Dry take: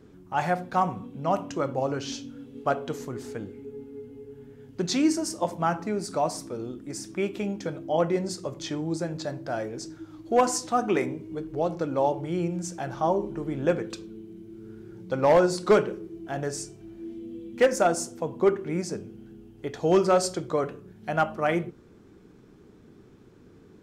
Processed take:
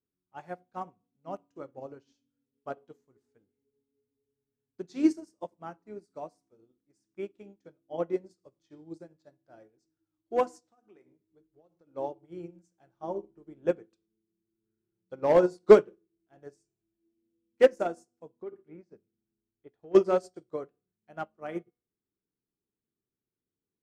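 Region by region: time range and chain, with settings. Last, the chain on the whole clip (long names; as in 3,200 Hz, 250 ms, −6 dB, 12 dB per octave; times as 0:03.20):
0:10.59–0:11.94: low-pass filter 10,000 Hz + downward compressor 8 to 1, threshold −29 dBFS
0:18.42–0:19.95: low-pass filter 3,200 Hz + downward compressor 20 to 1, threshold −24 dBFS
whole clip: hum removal 241.8 Hz, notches 37; dynamic equaliser 380 Hz, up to +7 dB, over −37 dBFS, Q 0.98; expander for the loud parts 2.5 to 1, over −35 dBFS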